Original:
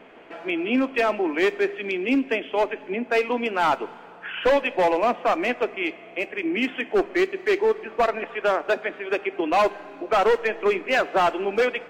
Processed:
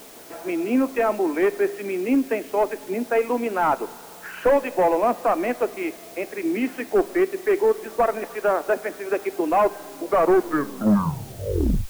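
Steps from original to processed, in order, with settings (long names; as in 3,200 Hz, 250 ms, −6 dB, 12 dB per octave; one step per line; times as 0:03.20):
turntable brake at the end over 1.92 s
Gaussian smoothing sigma 4.3 samples
bit-depth reduction 8 bits, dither triangular
level +2 dB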